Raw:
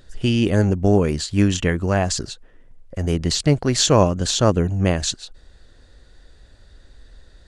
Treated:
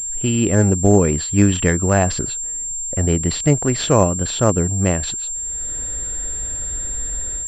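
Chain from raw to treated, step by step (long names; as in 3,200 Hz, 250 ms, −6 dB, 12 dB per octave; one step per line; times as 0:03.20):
automatic gain control gain up to 16 dB
switching amplifier with a slow clock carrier 7,400 Hz
level −1 dB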